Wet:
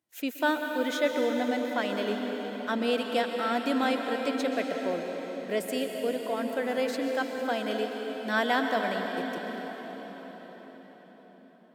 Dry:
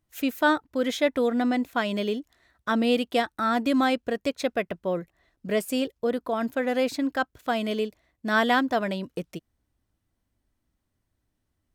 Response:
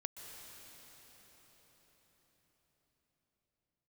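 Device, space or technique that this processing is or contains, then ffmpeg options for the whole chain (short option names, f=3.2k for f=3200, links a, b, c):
cathedral: -filter_complex "[0:a]highpass=240,equalizer=f=1.2k:t=o:w=0.24:g=-5.5[a];[1:a]atrim=start_sample=2205[b];[a][b]afir=irnorm=-1:irlink=0"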